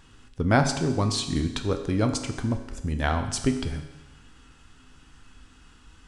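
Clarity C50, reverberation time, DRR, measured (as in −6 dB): 9.0 dB, 1.1 s, 6.0 dB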